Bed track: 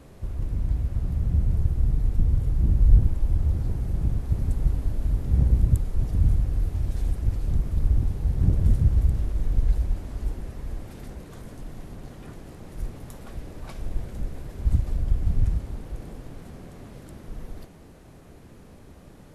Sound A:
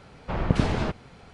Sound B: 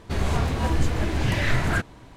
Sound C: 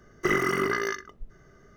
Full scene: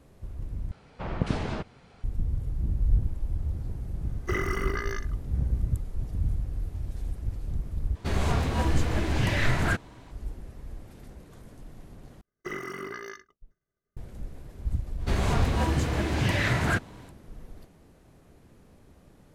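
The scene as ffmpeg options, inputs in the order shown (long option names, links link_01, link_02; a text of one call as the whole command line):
ffmpeg -i bed.wav -i cue0.wav -i cue1.wav -i cue2.wav -filter_complex "[3:a]asplit=2[link_01][link_02];[2:a]asplit=2[link_03][link_04];[0:a]volume=-7.5dB[link_05];[link_02]agate=range=-33dB:threshold=-42dB:ratio=3:release=100:detection=peak[link_06];[link_04]highpass=63[link_07];[link_05]asplit=4[link_08][link_09][link_10][link_11];[link_08]atrim=end=0.714[link_12];[1:a]atrim=end=1.33,asetpts=PTS-STARTPTS,volume=-5.5dB[link_13];[link_09]atrim=start=2.036:end=7.954[link_14];[link_03]atrim=end=2.16,asetpts=PTS-STARTPTS,volume=-2dB[link_15];[link_10]atrim=start=10.106:end=12.214[link_16];[link_06]atrim=end=1.76,asetpts=PTS-STARTPTS,volume=-11.5dB[link_17];[link_11]atrim=start=13.966[link_18];[link_01]atrim=end=1.76,asetpts=PTS-STARTPTS,volume=-6dB,afade=type=in:duration=0.004:curve=hsin,afade=type=out:start_time=1.756:duration=0.004:curve=hsin,adelay=4040[link_19];[link_07]atrim=end=2.16,asetpts=PTS-STARTPTS,volume=-1dB,afade=type=in:duration=0.05,afade=type=out:start_time=2.11:duration=0.05,adelay=14970[link_20];[link_12][link_13]acrossfade=duration=0.004:curve1=hsin:curve2=hsin[link_21];[link_21][link_14]acrossfade=duration=0.004:curve1=hsin:curve2=hsin[link_22];[link_22][link_15]acrossfade=duration=0.004:curve1=hsin:curve2=hsin[link_23];[link_23][link_16]acrossfade=duration=0.004:curve1=hsin:curve2=hsin[link_24];[link_24][link_17]acrossfade=duration=0.004:curve1=hsin:curve2=hsin[link_25];[link_25][link_18]acrossfade=duration=0.004:curve1=hsin:curve2=hsin[link_26];[link_26][link_19][link_20]amix=inputs=3:normalize=0" out.wav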